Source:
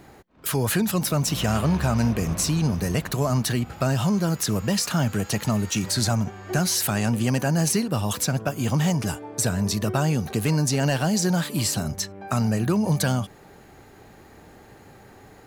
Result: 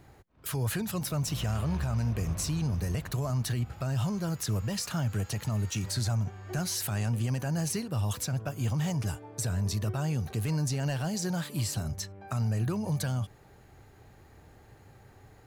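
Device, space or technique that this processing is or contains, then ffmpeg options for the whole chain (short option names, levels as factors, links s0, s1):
car stereo with a boomy subwoofer: -af "lowshelf=f=150:t=q:w=1.5:g=6.5,alimiter=limit=0.224:level=0:latency=1:release=44,volume=0.355"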